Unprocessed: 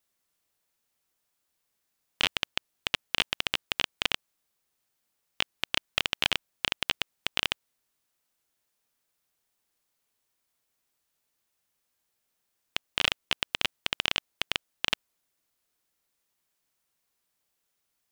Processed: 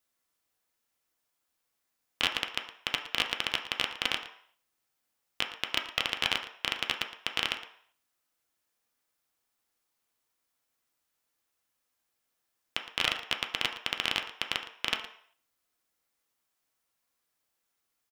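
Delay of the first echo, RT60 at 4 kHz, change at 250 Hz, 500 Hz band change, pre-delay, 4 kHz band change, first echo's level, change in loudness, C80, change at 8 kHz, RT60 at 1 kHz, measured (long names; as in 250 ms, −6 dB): 114 ms, 0.55 s, −1.5 dB, −1.5 dB, 3 ms, −1.5 dB, −15.5 dB, −1.5 dB, 10.5 dB, −2.0 dB, 0.60 s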